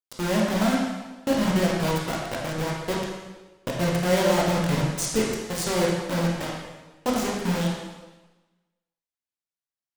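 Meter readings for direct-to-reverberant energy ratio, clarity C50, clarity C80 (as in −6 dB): −3.5 dB, 0.5 dB, 3.0 dB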